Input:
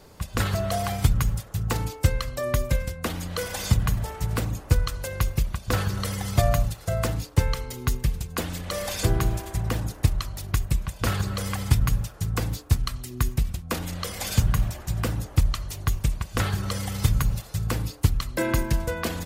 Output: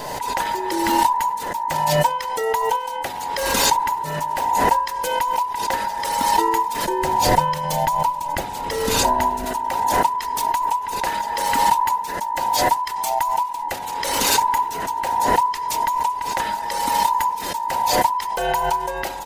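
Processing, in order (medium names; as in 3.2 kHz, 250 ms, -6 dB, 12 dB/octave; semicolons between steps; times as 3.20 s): every band turned upside down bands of 1 kHz; 6.85–9.45 s: bass shelf 310 Hz +12 dB; swell ahead of each attack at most 26 dB/s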